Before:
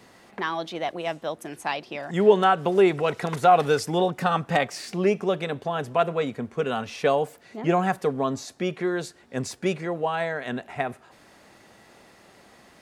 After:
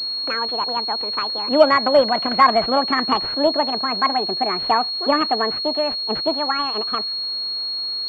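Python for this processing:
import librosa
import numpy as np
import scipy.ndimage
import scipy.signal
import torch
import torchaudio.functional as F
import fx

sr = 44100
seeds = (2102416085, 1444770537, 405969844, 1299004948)

y = fx.speed_glide(x, sr, from_pct=138, to_pct=179)
y = fx.pwm(y, sr, carrier_hz=4300.0)
y = y * 10.0 ** (4.5 / 20.0)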